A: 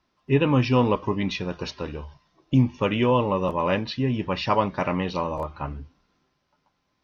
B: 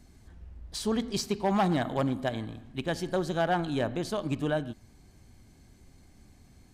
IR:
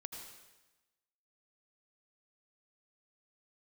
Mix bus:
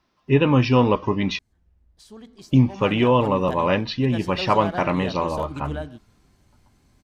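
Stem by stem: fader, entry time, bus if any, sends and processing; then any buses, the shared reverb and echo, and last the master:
+3.0 dB, 0.00 s, muted 0:01.39–0:02.38, no send, no processing
0:02.57 −14.5 dB → 0:03.27 −3.5 dB, 1.25 s, no send, no processing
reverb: not used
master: no processing

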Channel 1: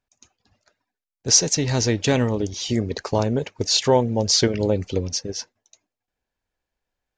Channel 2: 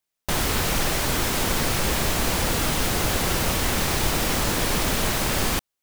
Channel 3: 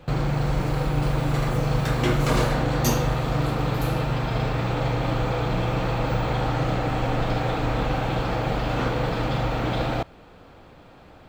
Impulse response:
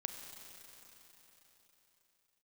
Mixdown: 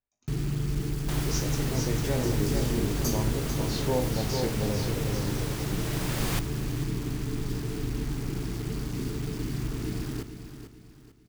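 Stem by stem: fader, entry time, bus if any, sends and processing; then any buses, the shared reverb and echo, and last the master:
−4.0 dB, 0.00 s, no send, echo send −4.5 dB, high-shelf EQ 2,700 Hz −10.5 dB; tuned comb filter 51 Hz, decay 0.36 s, harmonics all, mix 90%
−6.5 dB, 0.80 s, no send, echo send −16 dB, automatic ducking −9 dB, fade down 1.80 s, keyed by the first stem
−5.0 dB, 0.20 s, no send, echo send −10 dB, brick-wall band-stop 460–4,400 Hz; bit-depth reduction 6 bits, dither none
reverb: not used
echo: repeating echo 445 ms, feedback 36%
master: no processing

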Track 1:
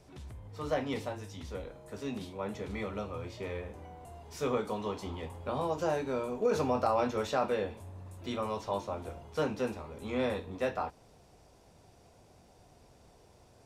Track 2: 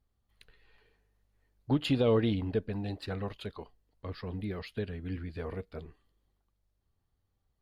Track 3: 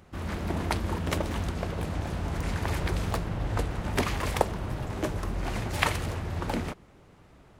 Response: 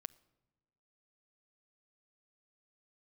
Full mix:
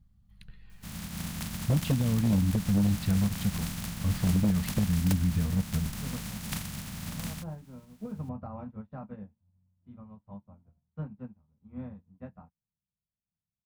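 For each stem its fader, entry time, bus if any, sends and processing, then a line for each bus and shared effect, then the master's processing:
−6.0 dB, 1.60 s, bus A, no send, low-pass filter 1,300 Hz 12 dB per octave; expander for the loud parts 2.5 to 1, over −53 dBFS
+1.5 dB, 0.00 s, bus A, no send, no processing
−12.0 dB, 0.70 s, no bus, no send, compressing power law on the bin magnitudes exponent 0.21
bus A: 0.0 dB, downward compressor 3 to 1, threshold −37 dBFS, peak gain reduction 12.5 dB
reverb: not used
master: low shelf with overshoot 270 Hz +12.5 dB, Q 3; wave folding −18.5 dBFS

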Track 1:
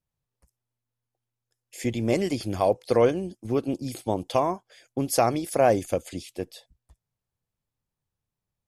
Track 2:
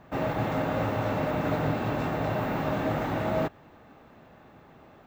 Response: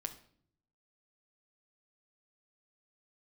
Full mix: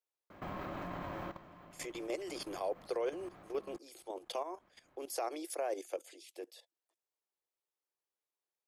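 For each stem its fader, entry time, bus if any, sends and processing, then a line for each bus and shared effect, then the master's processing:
−4.0 dB, 0.00 s, no send, Butterworth high-pass 320 Hz 72 dB per octave
+2.5 dB, 0.30 s, no send, downward compressor 8 to 1, threshold −33 dBFS, peak gain reduction 11 dB; pitch vibrato 1.2 Hz 18 cents; ring modulation 440 Hz; automatic ducking −13 dB, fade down 0.65 s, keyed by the first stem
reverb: not used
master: output level in coarse steps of 14 dB; brickwall limiter −27.5 dBFS, peak gain reduction 9.5 dB

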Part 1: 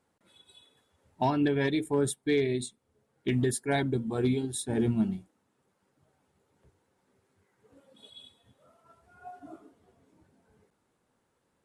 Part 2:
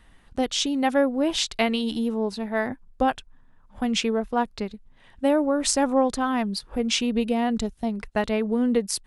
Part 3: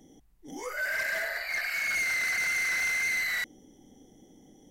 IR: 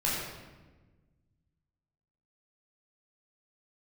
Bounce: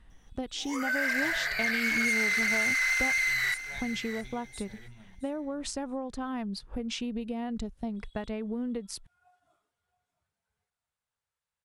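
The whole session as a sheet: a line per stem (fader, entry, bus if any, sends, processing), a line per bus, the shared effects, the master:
−7.5 dB, 0.00 s, no send, echo send −16 dB, guitar amp tone stack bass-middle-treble 10-0-10
−7.5 dB, 0.00 s, no send, no echo send, low-shelf EQ 220 Hz +7.5 dB; downward compressor 10 to 1, threshold −23 dBFS, peak gain reduction 10.5 dB
−3.5 dB, 0.10 s, no send, echo send −12.5 dB, downward compressor 2 to 1, threshold −34 dBFS, peak gain reduction 4 dB; high-pass filter 880 Hz 12 dB per octave; automatic gain control gain up to 9 dB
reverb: not used
echo: repeating echo 669 ms, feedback 18%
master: high-shelf EQ 8,900 Hz −7 dB

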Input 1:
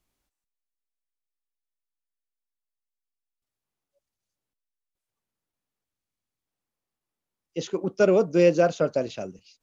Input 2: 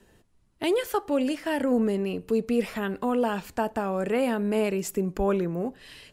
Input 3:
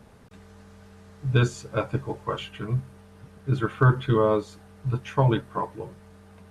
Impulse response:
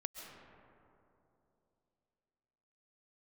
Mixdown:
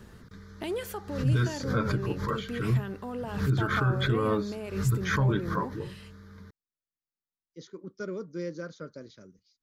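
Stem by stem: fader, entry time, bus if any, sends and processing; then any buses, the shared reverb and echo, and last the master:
−12.0 dB, 0.00 s, bus A, no send, no processing
+3.0 dB, 0.00 s, no bus, no send, brickwall limiter −23.5 dBFS, peak gain reduction 10 dB; automatic ducking −8 dB, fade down 1.15 s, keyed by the third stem
+2.5 dB, 0.00 s, bus A, no send, background raised ahead of every attack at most 110 dB per second
bus A: 0.0 dB, phaser with its sweep stopped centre 2,700 Hz, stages 6; brickwall limiter −18 dBFS, peak gain reduction 11.5 dB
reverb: not used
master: no processing

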